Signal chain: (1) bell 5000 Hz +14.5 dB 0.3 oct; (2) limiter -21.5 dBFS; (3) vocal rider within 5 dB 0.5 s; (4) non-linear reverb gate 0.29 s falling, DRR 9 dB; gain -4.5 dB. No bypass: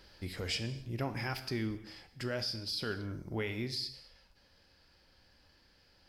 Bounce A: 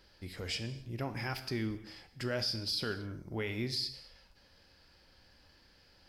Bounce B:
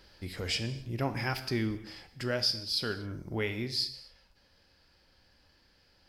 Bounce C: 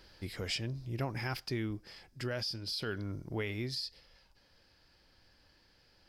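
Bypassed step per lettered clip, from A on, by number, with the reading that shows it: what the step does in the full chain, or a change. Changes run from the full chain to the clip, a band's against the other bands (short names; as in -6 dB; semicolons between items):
3, 4 kHz band +1.5 dB; 2, crest factor change +2.5 dB; 4, 125 Hz band +1.5 dB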